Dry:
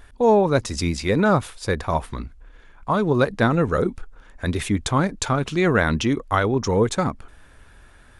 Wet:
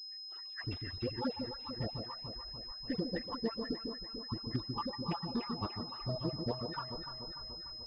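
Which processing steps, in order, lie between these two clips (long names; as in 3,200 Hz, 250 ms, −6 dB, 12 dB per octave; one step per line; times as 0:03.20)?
time-frequency cells dropped at random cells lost 77%
parametric band 2,000 Hz −8.5 dB 0.6 octaves
downward compressor 2 to 1, threshold −35 dBFS, peak gain reduction 11 dB
phase-vocoder pitch shift with formants kept +4 semitones
delay that swaps between a low-pass and a high-pass 153 ms, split 820 Hz, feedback 76%, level −5 dB
on a send at −23.5 dB: convolution reverb RT60 0.40 s, pre-delay 142 ms
on the sum: wrong playback speed 24 fps film run at 25 fps
all-pass dispersion highs, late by 105 ms, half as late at 1,100 Hz
switching amplifier with a slow clock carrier 5,100 Hz
level −4 dB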